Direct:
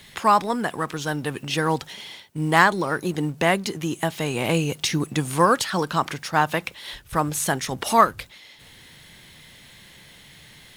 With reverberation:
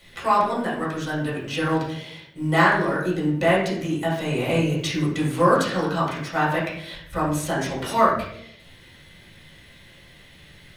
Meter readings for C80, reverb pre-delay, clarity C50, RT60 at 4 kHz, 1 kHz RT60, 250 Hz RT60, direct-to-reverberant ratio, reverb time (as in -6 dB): 7.0 dB, 3 ms, 3.0 dB, 0.55 s, 0.55 s, 0.95 s, -7.0 dB, 0.70 s